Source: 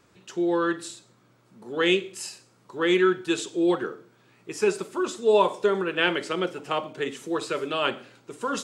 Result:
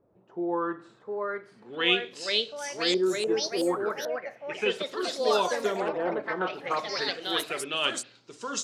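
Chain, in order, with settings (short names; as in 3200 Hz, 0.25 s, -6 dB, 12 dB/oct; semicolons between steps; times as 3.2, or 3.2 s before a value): LFO low-pass saw up 0.34 Hz 580–7900 Hz; echoes that change speed 0.767 s, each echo +3 st, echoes 3; high shelf 4200 Hz +9.5 dB; gain -7.5 dB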